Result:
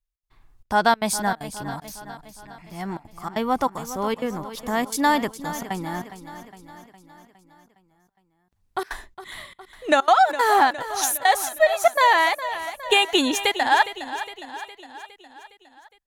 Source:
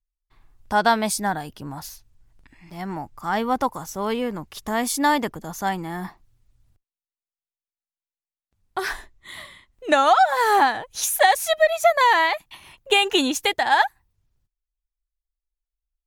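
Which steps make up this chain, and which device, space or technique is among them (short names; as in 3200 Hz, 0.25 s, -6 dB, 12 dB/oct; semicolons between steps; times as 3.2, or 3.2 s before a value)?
trance gate with a delay (step gate "xx.xxxxx.xxx.xx" 192 bpm -24 dB; feedback echo 0.411 s, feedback 57%, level -13 dB)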